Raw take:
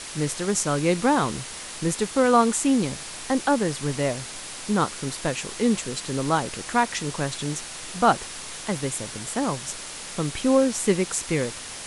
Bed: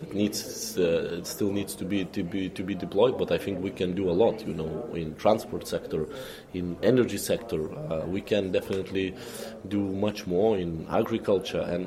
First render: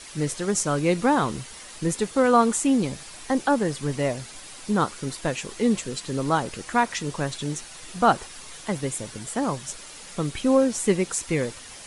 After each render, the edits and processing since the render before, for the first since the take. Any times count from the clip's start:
broadband denoise 8 dB, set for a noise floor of −37 dBFS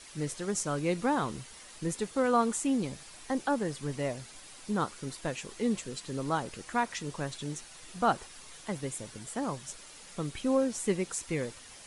level −8 dB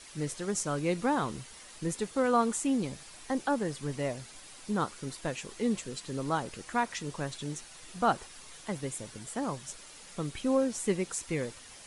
no processing that can be heard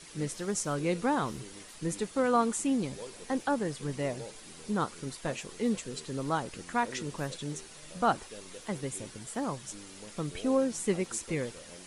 mix in bed −22.5 dB

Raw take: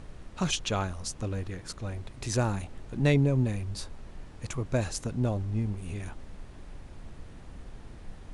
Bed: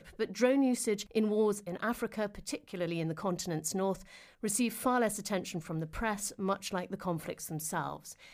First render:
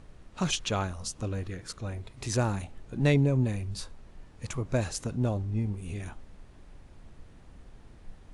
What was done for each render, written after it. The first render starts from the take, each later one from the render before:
noise reduction from a noise print 6 dB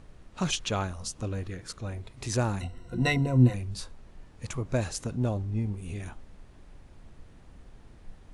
0:02.60–0:03.54: EQ curve with evenly spaced ripples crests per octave 2, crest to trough 18 dB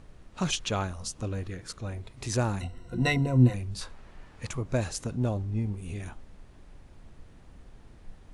0:03.81–0:04.48: parametric band 1,600 Hz +7.5 dB 2.8 octaves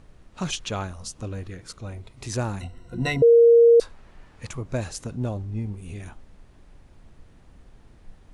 0:01.60–0:02.24: notch filter 1,700 Hz
0:03.22–0:03.80: beep over 467 Hz −10 dBFS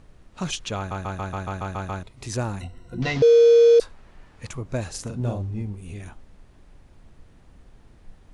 0:00.77: stutter in place 0.14 s, 9 plays
0:03.02–0:03.79: linear delta modulator 32 kbit/s, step −29.5 dBFS
0:04.90–0:05.62: double-tracking delay 42 ms −3.5 dB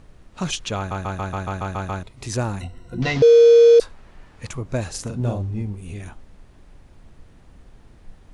level +3 dB

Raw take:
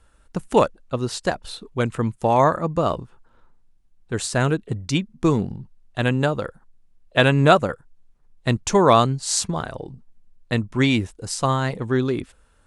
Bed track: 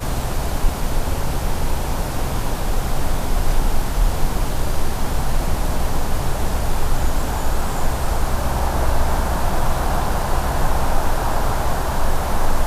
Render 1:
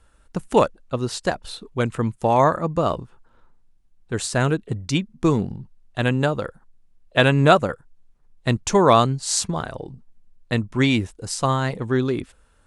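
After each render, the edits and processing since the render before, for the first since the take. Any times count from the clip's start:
no processing that can be heard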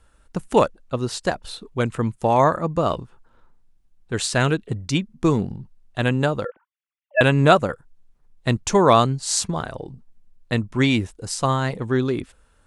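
0:02.90–0:04.78: dynamic equaliser 3,100 Hz, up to +6 dB, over −40 dBFS, Q 0.75
0:06.45–0:07.21: three sine waves on the formant tracks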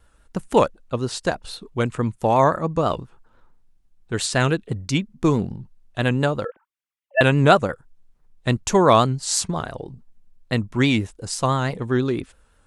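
pitch vibrato 6 Hz 64 cents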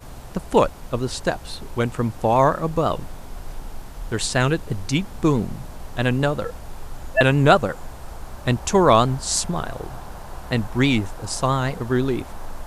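mix in bed track −16 dB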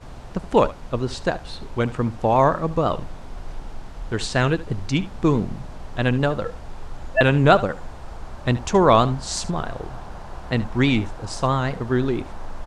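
high-frequency loss of the air 78 metres
single-tap delay 73 ms −17 dB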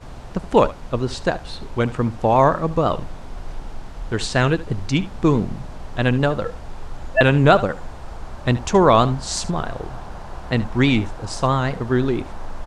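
level +2 dB
brickwall limiter −2 dBFS, peak gain reduction 2 dB

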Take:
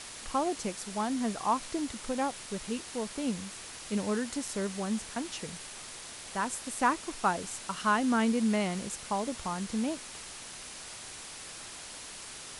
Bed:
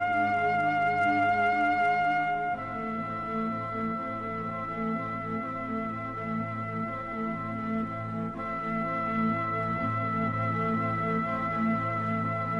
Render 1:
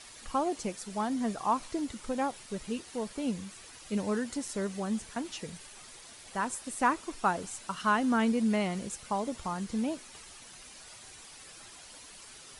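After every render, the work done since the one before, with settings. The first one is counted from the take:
broadband denoise 9 dB, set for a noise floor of −45 dBFS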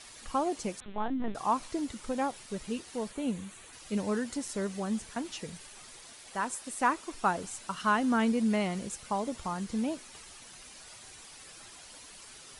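0:00.80–0:01.35: linear-prediction vocoder at 8 kHz pitch kept
0:03.11–0:03.73: parametric band 5,100 Hz −12 dB 0.34 octaves
0:06.12–0:07.14: low-shelf EQ 180 Hz −7.5 dB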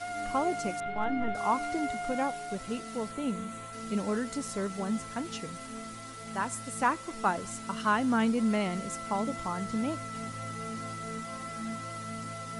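mix in bed −10 dB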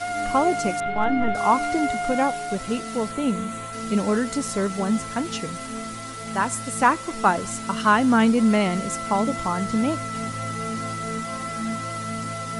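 level +9 dB

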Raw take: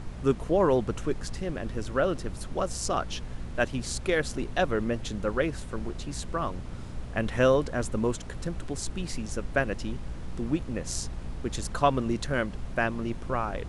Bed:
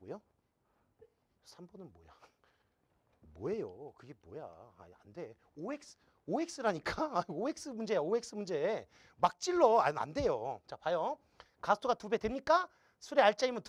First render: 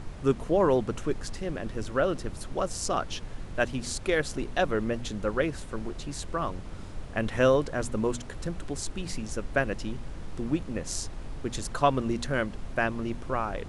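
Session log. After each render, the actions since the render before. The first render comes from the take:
hum removal 60 Hz, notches 4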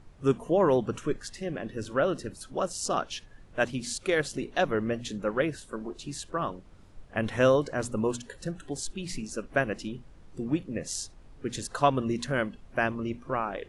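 noise reduction from a noise print 14 dB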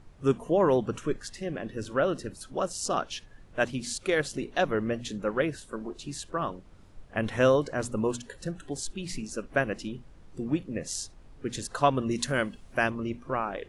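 0:12.11–0:12.90: high-shelf EQ 4,100 Hz +10.5 dB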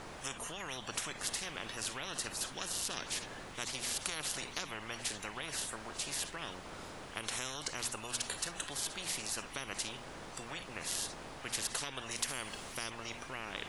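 downward compressor 4 to 1, threshold −27 dBFS, peak gain reduction 9 dB
every bin compressed towards the loudest bin 10 to 1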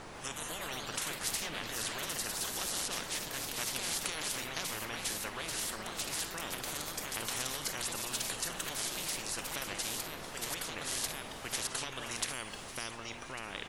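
single-tap delay 1,149 ms −16.5 dB
delay with pitch and tempo change per echo 147 ms, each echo +2 semitones, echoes 3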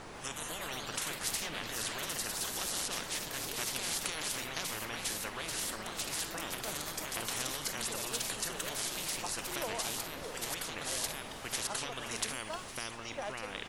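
mix in bed −14.5 dB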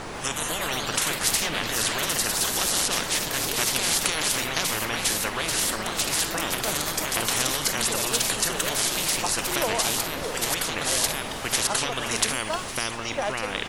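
level +12 dB

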